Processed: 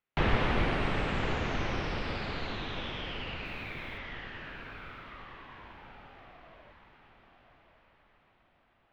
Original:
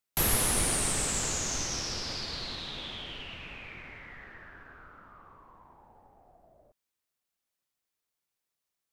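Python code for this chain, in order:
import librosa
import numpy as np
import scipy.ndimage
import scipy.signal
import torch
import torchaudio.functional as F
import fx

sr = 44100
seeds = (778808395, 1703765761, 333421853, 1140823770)

y = scipy.signal.sosfilt(scipy.signal.butter(4, 2900.0, 'lowpass', fs=sr, output='sos'), x)
y = fx.quant_dither(y, sr, seeds[0], bits=12, dither='none', at=(3.45, 3.98))
y = fx.echo_diffused(y, sr, ms=1083, feedback_pct=42, wet_db=-9.0)
y = y * 10.0 ** (3.5 / 20.0)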